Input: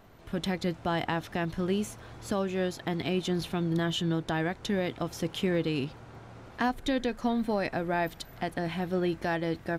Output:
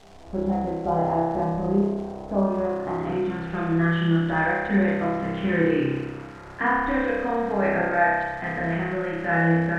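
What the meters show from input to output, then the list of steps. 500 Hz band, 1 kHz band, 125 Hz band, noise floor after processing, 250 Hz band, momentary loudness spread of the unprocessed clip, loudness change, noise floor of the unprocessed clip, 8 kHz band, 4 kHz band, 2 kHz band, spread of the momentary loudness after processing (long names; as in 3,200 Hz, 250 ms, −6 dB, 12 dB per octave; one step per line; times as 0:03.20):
+7.0 dB, +9.0 dB, +7.0 dB, −41 dBFS, +6.5 dB, 6 LU, +7.0 dB, −50 dBFS, below −10 dB, −6.0 dB, +10.5 dB, 7 LU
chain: multi-voice chorus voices 6, 0.39 Hz, delay 13 ms, depth 2.9 ms
spring reverb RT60 1.3 s, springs 30 ms, chirp 70 ms, DRR −5.5 dB
low-pass filter sweep 760 Hz → 1,800 Hz, 0:02.25–0:03.70
background noise white −61 dBFS
surface crackle 460 per second −40 dBFS
high-frequency loss of the air 84 metres
level +2 dB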